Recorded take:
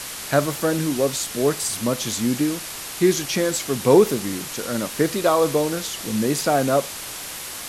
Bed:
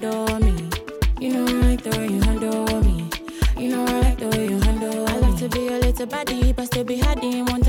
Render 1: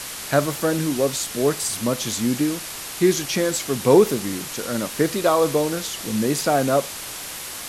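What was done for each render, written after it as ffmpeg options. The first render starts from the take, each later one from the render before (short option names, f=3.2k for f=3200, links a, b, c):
-af anull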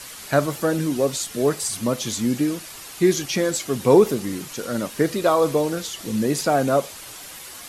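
-af "afftdn=nr=8:nf=-34"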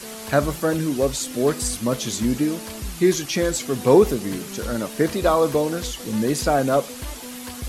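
-filter_complex "[1:a]volume=-15dB[a];[0:a][a]amix=inputs=2:normalize=0"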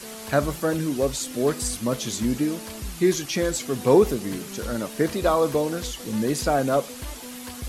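-af "volume=-2.5dB"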